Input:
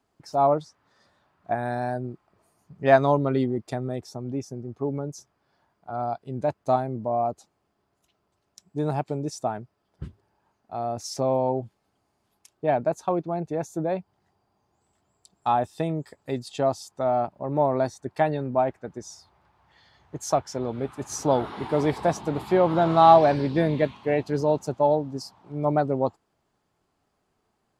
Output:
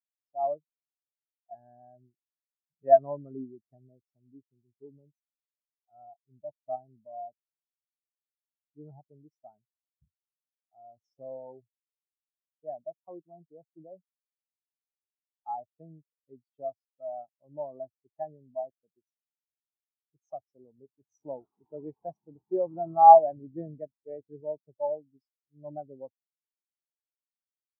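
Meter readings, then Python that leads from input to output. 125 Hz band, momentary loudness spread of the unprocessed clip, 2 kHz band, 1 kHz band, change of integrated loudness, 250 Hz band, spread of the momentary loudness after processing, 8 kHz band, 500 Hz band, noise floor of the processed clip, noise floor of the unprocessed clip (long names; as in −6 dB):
−22.5 dB, 14 LU, below −25 dB, −2.0 dB, −0.5 dB, −18.5 dB, 22 LU, below −40 dB, −7.0 dB, below −85 dBFS, −74 dBFS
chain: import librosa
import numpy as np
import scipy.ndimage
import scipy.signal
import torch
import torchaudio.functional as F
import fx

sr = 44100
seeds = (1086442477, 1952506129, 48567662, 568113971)

y = fx.spectral_expand(x, sr, expansion=2.5)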